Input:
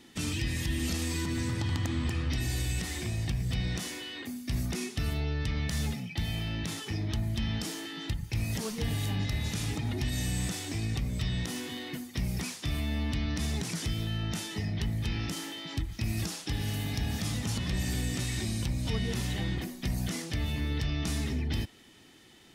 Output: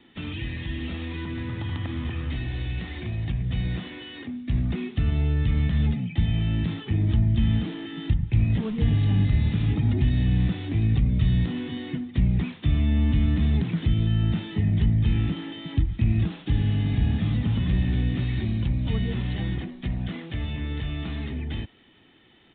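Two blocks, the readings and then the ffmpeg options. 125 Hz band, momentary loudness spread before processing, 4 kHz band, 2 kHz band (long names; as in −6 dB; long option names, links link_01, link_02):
+9.0 dB, 4 LU, −2.5 dB, 0.0 dB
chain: -filter_complex "[0:a]aresample=8000,aresample=44100,acrossover=split=300|970[link_01][link_02][link_03];[link_01]dynaudnorm=framelen=420:gausssize=21:maxgain=11dB[link_04];[link_04][link_02][link_03]amix=inputs=3:normalize=0"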